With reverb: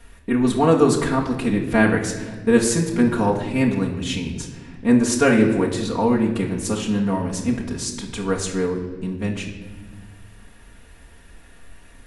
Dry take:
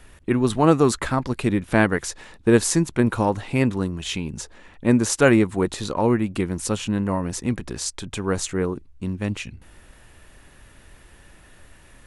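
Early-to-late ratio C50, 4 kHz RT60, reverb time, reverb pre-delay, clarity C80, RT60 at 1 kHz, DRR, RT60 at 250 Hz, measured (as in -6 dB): 7.0 dB, 1.1 s, 1.4 s, 4 ms, 9.0 dB, 1.2 s, -3.0 dB, 2.2 s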